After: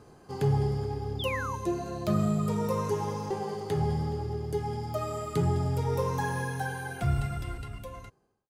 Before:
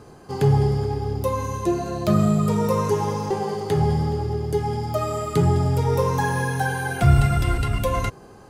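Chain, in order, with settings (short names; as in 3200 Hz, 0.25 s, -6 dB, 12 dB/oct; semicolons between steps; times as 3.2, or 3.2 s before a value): ending faded out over 2.18 s; painted sound fall, 1.19–1.56, 880–3700 Hz -28 dBFS; gain -8 dB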